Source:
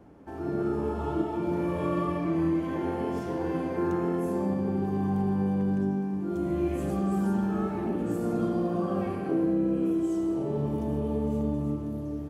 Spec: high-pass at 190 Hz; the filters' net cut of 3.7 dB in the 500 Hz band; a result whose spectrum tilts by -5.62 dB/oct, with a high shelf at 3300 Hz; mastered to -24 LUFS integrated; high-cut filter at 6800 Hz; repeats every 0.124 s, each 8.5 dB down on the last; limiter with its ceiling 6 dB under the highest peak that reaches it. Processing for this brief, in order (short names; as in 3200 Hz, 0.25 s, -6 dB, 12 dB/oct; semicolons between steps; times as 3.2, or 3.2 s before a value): HPF 190 Hz; LPF 6800 Hz; bell 500 Hz -5.5 dB; high shelf 3300 Hz +7.5 dB; limiter -24.5 dBFS; feedback echo 0.124 s, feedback 38%, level -8.5 dB; gain +8.5 dB